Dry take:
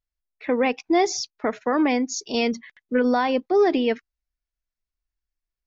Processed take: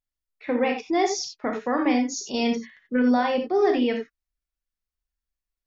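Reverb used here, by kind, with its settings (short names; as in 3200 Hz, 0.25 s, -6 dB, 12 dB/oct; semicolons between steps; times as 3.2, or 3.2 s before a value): non-linear reverb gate 0.11 s flat, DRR 2 dB; gain -4 dB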